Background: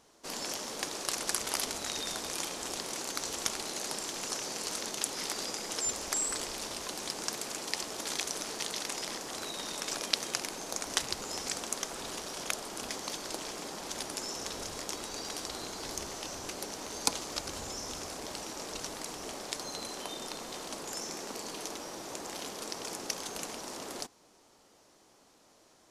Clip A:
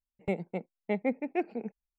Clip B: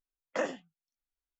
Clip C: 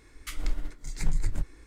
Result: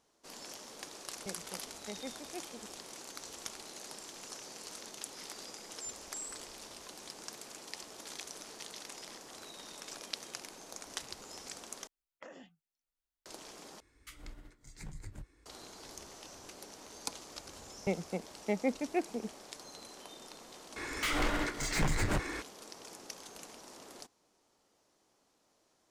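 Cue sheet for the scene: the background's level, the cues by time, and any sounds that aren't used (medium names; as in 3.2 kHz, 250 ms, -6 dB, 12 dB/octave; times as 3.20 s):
background -10.5 dB
0.98 s: add A -14.5 dB
11.87 s: replace with B -2 dB + compression 16:1, threshold -44 dBFS
13.80 s: replace with C -11.5 dB + high-pass 49 Hz
17.59 s: add A -2 dB
20.76 s: add C -8 dB + overdrive pedal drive 38 dB, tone 2.4 kHz, clips at -12 dBFS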